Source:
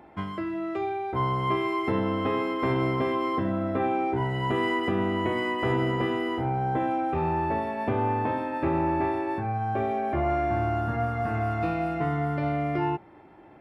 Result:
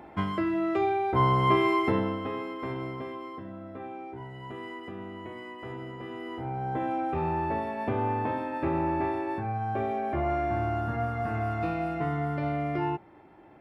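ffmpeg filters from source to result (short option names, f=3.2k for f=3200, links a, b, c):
-af "volume=15dB,afade=t=out:st=1.71:d=0.49:silence=0.316228,afade=t=out:st=2.2:d=1.21:silence=0.421697,afade=t=in:st=6.01:d=0.99:silence=0.266073"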